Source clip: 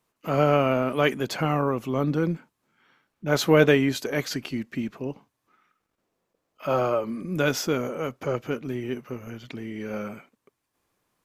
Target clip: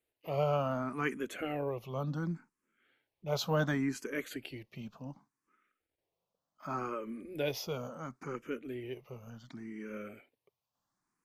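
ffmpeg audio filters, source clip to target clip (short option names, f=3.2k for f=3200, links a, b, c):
-filter_complex "[0:a]asplit=2[a][b];[b]afreqshift=0.69[c];[a][c]amix=inputs=2:normalize=1,volume=-8dB"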